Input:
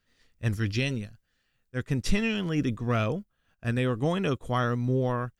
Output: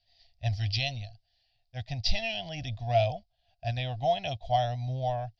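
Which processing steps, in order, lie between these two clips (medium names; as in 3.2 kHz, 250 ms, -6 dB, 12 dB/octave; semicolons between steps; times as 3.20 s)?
FFT filter 110 Hz 0 dB, 200 Hz -18 dB, 290 Hz -20 dB, 440 Hz -26 dB, 700 Hz +14 dB, 1.2 kHz -27 dB, 1.9 kHz -7 dB, 4.9 kHz +11 dB, 8.1 kHz -30 dB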